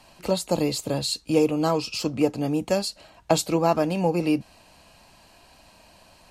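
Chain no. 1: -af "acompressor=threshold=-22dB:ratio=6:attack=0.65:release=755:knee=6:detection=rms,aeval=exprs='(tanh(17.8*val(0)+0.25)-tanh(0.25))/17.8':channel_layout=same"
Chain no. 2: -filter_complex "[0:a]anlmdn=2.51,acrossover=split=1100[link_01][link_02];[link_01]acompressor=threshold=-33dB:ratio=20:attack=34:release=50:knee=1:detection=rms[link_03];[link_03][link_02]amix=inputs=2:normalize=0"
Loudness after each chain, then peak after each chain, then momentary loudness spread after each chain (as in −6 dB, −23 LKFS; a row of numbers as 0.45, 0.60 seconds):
−34.5, −31.0 LKFS; −23.5, −13.0 dBFS; 20, 6 LU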